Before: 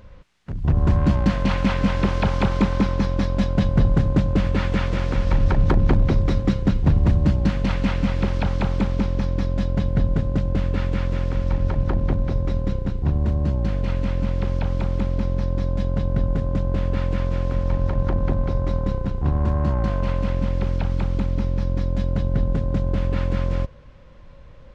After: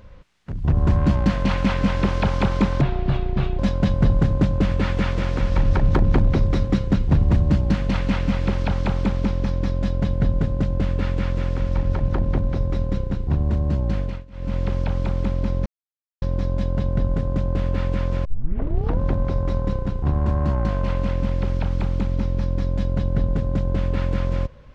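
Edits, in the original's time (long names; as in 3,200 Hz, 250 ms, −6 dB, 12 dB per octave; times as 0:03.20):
0:02.81–0:03.34: play speed 68%
0:13.74–0:14.32: duck −22.5 dB, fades 0.26 s
0:15.41: splice in silence 0.56 s
0:17.44: tape start 0.75 s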